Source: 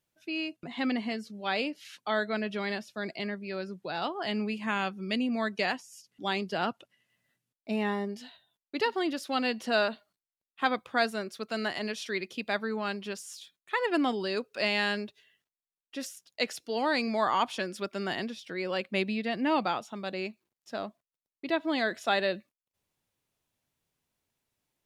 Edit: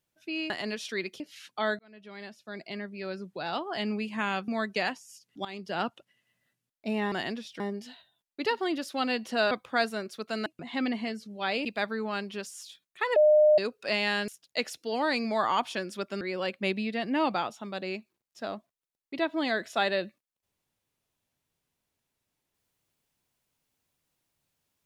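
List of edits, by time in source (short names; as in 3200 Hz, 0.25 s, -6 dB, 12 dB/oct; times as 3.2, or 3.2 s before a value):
0.5–1.69 swap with 11.67–12.37
2.28–3.66 fade in
4.97–5.31 cut
6.28–6.65 fade in, from -17 dB
9.86–10.72 cut
13.88–14.3 bleep 607 Hz -16 dBFS
15–16.11 cut
18.04–18.52 move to 7.95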